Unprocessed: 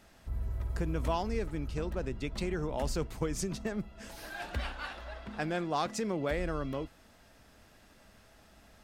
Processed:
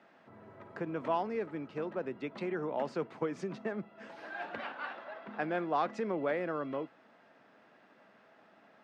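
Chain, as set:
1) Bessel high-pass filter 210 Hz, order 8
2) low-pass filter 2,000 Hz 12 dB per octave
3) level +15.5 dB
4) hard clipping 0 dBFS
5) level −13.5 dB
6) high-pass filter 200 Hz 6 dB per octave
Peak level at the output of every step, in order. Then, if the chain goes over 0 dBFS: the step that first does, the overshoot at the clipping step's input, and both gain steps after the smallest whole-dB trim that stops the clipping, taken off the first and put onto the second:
−19.0, −20.5, −5.0, −5.0, −18.5, −19.0 dBFS
no step passes full scale

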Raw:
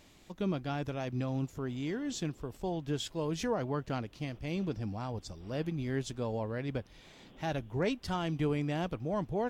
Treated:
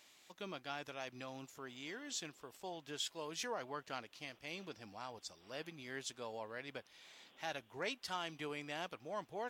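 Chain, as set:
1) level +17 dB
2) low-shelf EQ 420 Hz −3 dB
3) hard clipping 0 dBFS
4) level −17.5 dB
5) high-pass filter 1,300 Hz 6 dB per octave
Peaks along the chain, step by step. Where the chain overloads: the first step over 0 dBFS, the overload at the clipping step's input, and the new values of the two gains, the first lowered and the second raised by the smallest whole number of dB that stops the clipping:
−2.5, −4.0, −4.0, −21.5, −26.5 dBFS
no step passes full scale

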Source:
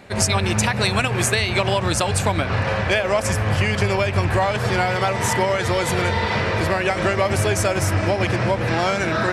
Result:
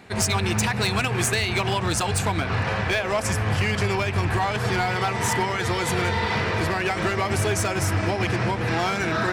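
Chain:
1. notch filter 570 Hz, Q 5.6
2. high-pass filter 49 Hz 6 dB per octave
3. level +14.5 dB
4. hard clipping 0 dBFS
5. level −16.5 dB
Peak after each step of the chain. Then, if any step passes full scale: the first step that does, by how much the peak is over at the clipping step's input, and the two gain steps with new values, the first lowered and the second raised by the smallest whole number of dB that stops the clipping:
−4.5, −4.5, +10.0, 0.0, −16.5 dBFS
step 3, 10.0 dB
step 3 +4.5 dB, step 5 −6.5 dB

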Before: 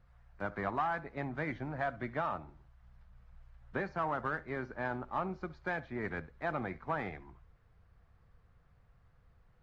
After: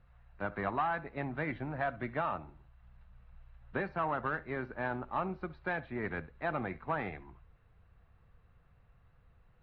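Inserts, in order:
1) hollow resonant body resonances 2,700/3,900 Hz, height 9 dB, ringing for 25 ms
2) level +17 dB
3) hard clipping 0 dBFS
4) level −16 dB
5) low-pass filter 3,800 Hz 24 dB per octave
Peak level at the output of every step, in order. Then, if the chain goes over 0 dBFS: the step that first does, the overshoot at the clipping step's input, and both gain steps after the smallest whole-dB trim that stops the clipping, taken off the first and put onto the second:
−21.0, −4.0, −4.0, −20.0, −20.0 dBFS
no step passes full scale

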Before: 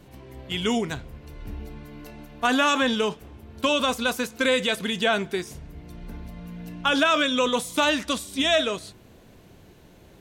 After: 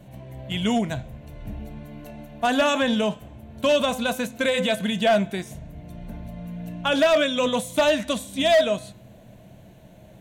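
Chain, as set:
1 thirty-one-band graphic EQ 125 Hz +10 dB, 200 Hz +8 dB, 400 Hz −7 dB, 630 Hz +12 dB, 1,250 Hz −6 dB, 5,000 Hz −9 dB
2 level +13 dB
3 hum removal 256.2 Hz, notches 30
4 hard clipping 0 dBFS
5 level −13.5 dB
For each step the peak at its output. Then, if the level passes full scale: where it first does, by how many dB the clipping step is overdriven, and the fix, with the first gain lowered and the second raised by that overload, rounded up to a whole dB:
−3.0, +10.0, +10.0, 0.0, −13.5 dBFS
step 2, 10.0 dB
step 2 +3 dB, step 5 −3.5 dB

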